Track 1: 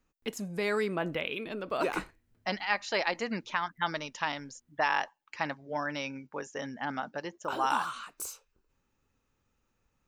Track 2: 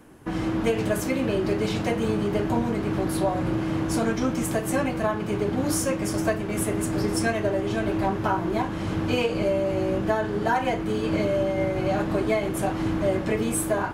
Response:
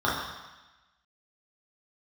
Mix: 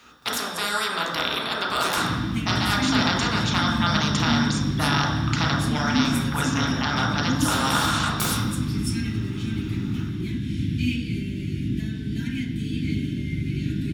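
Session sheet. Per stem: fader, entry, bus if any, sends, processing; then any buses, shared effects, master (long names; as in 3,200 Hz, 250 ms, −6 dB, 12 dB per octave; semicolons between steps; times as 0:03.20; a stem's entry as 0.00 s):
−6.5 dB, 0.00 s, send −5.5 dB, meter weighting curve D; every bin compressed towards the loudest bin 4 to 1
−4.0 dB, 1.70 s, send −7.5 dB, elliptic band-stop filter 290–2,200 Hz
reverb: on, RT60 1.1 s, pre-delay 3 ms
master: no processing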